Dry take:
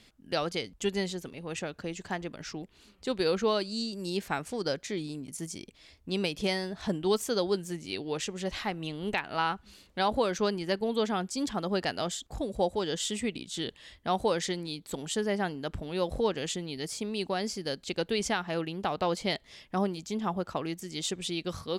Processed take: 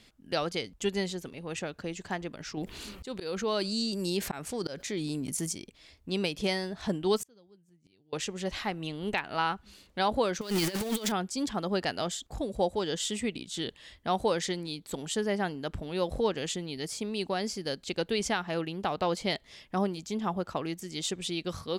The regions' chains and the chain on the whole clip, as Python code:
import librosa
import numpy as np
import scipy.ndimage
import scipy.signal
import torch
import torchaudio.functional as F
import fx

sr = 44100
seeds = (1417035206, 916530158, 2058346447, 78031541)

y = fx.chain(x, sr, fx.high_shelf(hz=9800.0, db=5.5),
    fx.auto_swell(attack_ms=460.0),
    fx.env_flatten(amount_pct=50), at=(2.57, 5.53))
y = fx.chain(y, sr, fx.peak_eq(hz=130.0, db=11.5, octaves=1.9),
    fx.gate_flip(shuts_db=-27.0, range_db=-34), at=(7.2, 8.13))
y = fx.chain(y, sr, fx.zero_step(step_db=-33.0),
    fx.high_shelf(hz=2400.0, db=10.0),
    fx.over_compress(threshold_db=-30.0, ratio=-0.5), at=(10.41, 11.12))